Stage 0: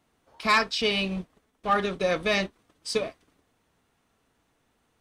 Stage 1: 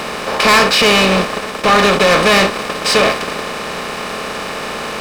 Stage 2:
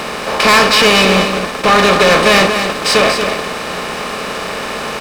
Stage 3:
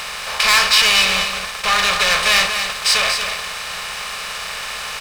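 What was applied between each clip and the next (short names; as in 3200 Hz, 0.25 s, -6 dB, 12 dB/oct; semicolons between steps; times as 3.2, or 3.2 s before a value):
per-bin compression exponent 0.4; sample leveller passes 3; gain +2.5 dB
echo 0.233 s -7.5 dB; gain +1 dB
passive tone stack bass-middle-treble 10-0-10; gain +1 dB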